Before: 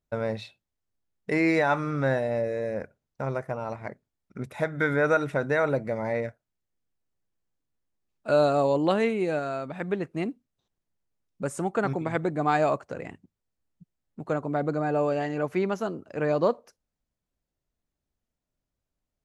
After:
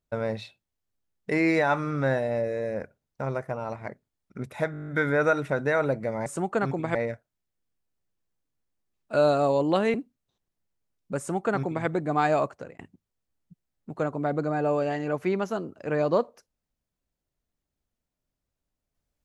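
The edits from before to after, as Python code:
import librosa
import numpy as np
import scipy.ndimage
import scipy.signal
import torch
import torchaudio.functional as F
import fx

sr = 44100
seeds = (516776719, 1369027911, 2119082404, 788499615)

y = fx.edit(x, sr, fx.stutter(start_s=4.72, slice_s=0.02, count=9),
    fx.cut(start_s=9.09, length_s=1.15),
    fx.duplicate(start_s=11.48, length_s=0.69, to_s=6.1),
    fx.fade_out_span(start_s=12.84, length_s=0.25), tone=tone)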